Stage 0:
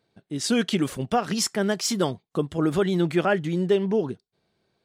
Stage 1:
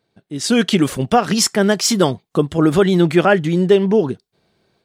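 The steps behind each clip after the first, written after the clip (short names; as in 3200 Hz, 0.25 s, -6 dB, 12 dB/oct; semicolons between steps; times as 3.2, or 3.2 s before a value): AGC gain up to 7.5 dB; gain +2 dB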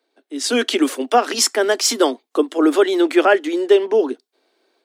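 steep high-pass 250 Hz 96 dB/oct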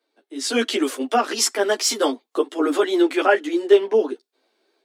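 ensemble effect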